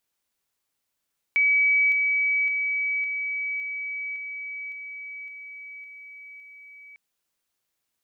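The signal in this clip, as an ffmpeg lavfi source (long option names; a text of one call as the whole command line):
ffmpeg -f lavfi -i "aevalsrc='pow(10,(-17-3*floor(t/0.56))/20)*sin(2*PI*2280*t)':duration=5.6:sample_rate=44100" out.wav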